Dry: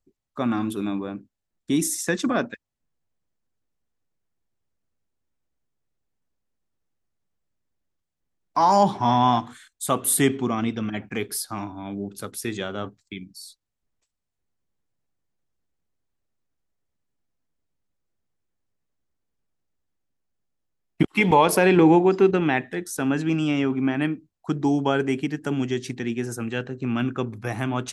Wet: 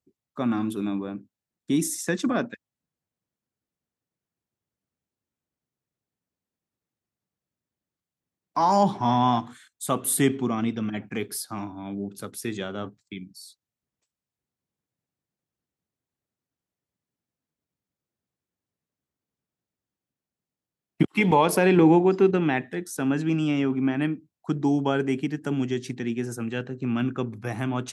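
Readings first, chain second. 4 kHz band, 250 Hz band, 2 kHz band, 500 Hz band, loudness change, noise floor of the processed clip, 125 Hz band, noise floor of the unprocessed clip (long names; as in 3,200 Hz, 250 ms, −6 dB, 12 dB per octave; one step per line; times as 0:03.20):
−3.5 dB, −1.0 dB, −3.5 dB, −2.0 dB, −2.0 dB, below −85 dBFS, −0.5 dB, −82 dBFS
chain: high-pass filter 140 Hz 12 dB per octave
low-shelf EQ 180 Hz +9.5 dB
level −3.5 dB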